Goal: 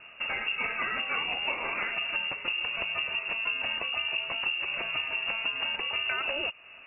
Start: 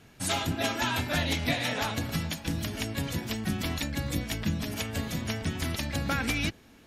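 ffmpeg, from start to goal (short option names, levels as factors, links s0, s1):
-af "acompressor=threshold=0.0178:ratio=4,lowpass=f=2500:t=q:w=0.5098,lowpass=f=2500:t=q:w=0.6013,lowpass=f=2500:t=q:w=0.9,lowpass=f=2500:t=q:w=2.563,afreqshift=-2900,volume=2.11"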